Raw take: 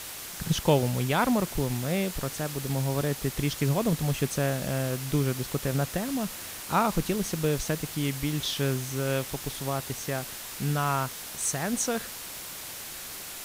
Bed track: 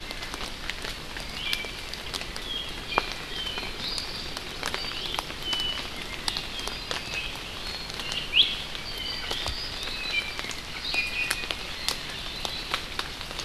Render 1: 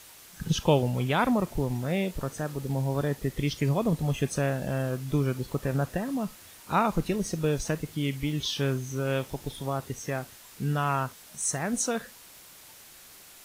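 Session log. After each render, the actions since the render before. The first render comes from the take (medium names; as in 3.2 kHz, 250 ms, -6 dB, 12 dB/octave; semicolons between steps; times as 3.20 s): noise print and reduce 11 dB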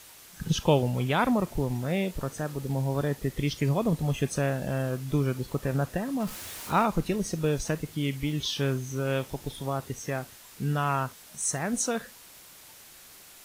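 6.20–6.85 s: jump at every zero crossing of -37 dBFS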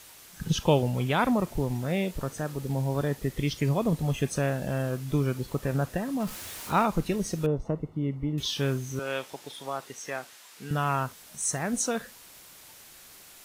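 7.46–8.38 s: Savitzky-Golay filter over 65 samples; 8.99–10.71 s: frequency weighting A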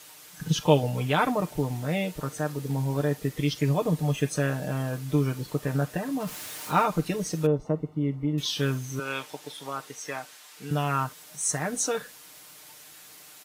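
high-pass 140 Hz 6 dB/octave; comb 6.6 ms, depth 69%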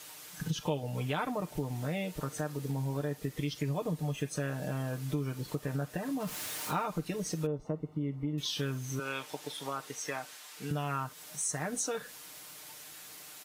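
compression 3:1, threshold -33 dBFS, peak gain reduction 14.5 dB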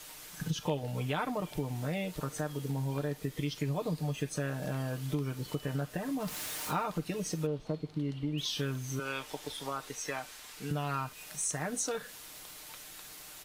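add bed track -25.5 dB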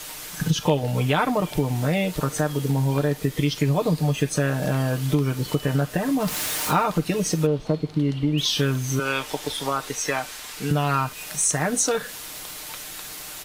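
trim +12 dB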